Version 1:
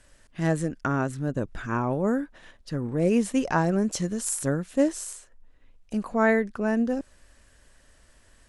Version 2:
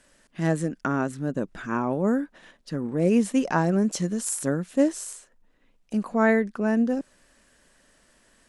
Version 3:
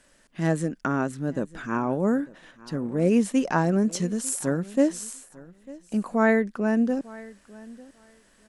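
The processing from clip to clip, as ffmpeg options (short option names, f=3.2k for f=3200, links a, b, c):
-af "lowshelf=f=130:t=q:w=1.5:g=-10"
-af "aecho=1:1:898|1796:0.0891|0.0143"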